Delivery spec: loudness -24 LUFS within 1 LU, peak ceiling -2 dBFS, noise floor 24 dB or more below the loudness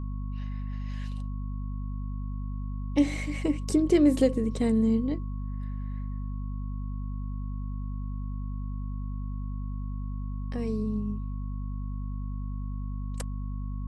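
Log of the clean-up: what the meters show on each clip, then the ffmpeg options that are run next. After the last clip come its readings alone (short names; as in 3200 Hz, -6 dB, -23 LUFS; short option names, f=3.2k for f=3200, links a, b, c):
hum 50 Hz; harmonics up to 250 Hz; hum level -31 dBFS; steady tone 1100 Hz; tone level -53 dBFS; loudness -31.5 LUFS; peak -11.0 dBFS; loudness target -24.0 LUFS
-> -af "bandreject=f=50:t=h:w=6,bandreject=f=100:t=h:w=6,bandreject=f=150:t=h:w=6,bandreject=f=200:t=h:w=6,bandreject=f=250:t=h:w=6"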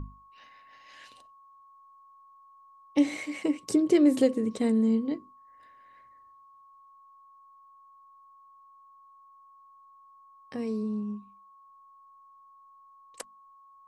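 hum none; steady tone 1100 Hz; tone level -53 dBFS
-> -af "bandreject=f=1.1k:w=30"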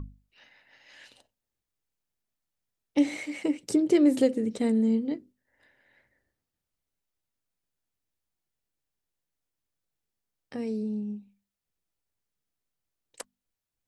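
steady tone none; loudness -27.0 LUFS; peak -11.5 dBFS; loudness target -24.0 LUFS
-> -af "volume=3dB"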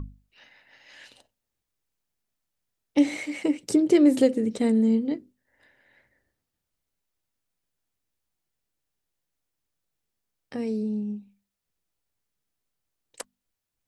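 loudness -24.0 LUFS; peak -8.5 dBFS; noise floor -84 dBFS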